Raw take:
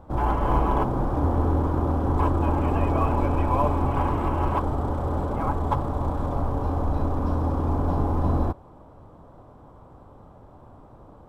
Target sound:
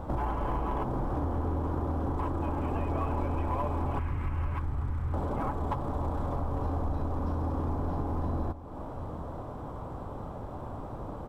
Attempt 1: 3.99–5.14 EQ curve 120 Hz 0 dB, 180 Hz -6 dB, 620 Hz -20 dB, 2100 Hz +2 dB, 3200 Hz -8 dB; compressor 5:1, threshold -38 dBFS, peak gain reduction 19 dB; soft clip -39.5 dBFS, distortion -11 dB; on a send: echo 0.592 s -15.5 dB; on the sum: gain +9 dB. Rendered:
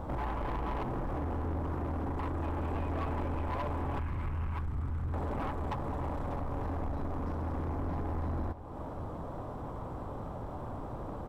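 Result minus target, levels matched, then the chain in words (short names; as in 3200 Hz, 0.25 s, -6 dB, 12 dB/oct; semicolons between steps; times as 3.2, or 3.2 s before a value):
soft clip: distortion +12 dB; echo 0.258 s early
3.99–5.14 EQ curve 120 Hz 0 dB, 180 Hz -6 dB, 620 Hz -20 dB, 2100 Hz +2 dB, 3200 Hz -8 dB; compressor 5:1, threshold -38 dBFS, peak gain reduction 19 dB; soft clip -29.5 dBFS, distortion -23 dB; on a send: echo 0.85 s -15.5 dB; on the sum: gain +9 dB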